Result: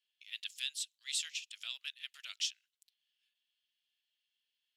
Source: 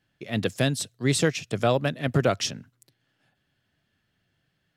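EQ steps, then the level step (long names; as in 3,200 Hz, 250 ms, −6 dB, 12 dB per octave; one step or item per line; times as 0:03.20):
dynamic equaliser 7,300 Hz, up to +5 dB, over −50 dBFS, Q 4.1
four-pole ladder high-pass 2,600 Hz, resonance 50%
−2.0 dB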